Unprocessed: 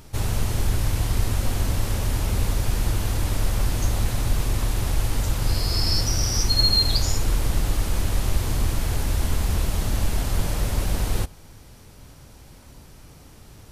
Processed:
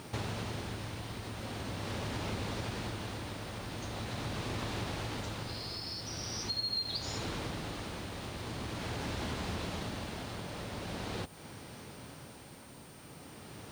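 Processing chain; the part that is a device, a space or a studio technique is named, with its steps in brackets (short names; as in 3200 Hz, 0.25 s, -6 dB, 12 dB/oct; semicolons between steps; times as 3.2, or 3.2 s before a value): dynamic EQ 3900 Hz, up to +5 dB, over -42 dBFS, Q 2.4; medium wave at night (BPF 150–4400 Hz; compressor 6:1, threshold -38 dBFS, peak gain reduction 21 dB; tremolo 0.43 Hz, depth 44%; whine 9000 Hz -65 dBFS; white noise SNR 23 dB); gain +4 dB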